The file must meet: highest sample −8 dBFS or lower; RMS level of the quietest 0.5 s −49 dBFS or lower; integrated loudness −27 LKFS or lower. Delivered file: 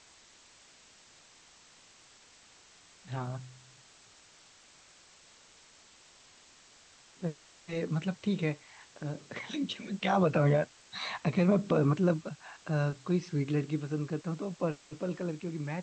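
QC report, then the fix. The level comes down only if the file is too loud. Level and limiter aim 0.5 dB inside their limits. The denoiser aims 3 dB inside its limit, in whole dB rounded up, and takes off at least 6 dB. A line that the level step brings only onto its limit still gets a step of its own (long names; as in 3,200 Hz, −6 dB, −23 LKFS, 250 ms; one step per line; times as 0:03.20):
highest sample −15.0 dBFS: in spec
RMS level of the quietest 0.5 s −59 dBFS: in spec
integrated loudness −32.5 LKFS: in spec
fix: no processing needed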